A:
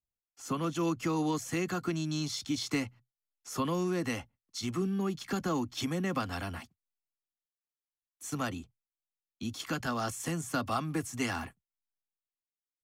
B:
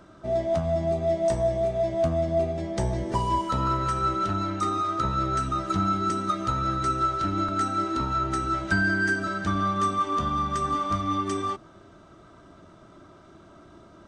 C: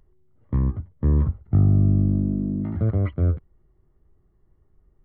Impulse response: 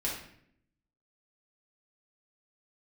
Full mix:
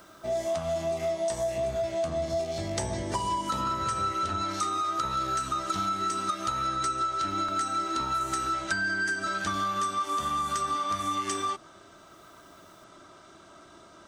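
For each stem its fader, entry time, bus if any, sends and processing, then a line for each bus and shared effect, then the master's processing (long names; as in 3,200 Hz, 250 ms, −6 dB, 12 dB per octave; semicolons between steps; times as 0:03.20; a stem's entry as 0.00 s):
−7.5 dB, 0.00 s, bus A, no send, every bin's largest magnitude spread in time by 120 ms; guitar amp tone stack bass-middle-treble 10-0-10
+2.5 dB, 0.00 s, no bus, no send, high-shelf EQ 4,500 Hz +9.5 dB
−1.5 dB, 1.05 s, bus A, no send, no processing
bus A: 0.0 dB, upward compression, threshold −40 dBFS; brickwall limiter −21 dBFS, peak gain reduction 11 dB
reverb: not used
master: low-shelf EQ 370 Hz −12 dB; downward compressor, threshold −26 dBFS, peak gain reduction 8 dB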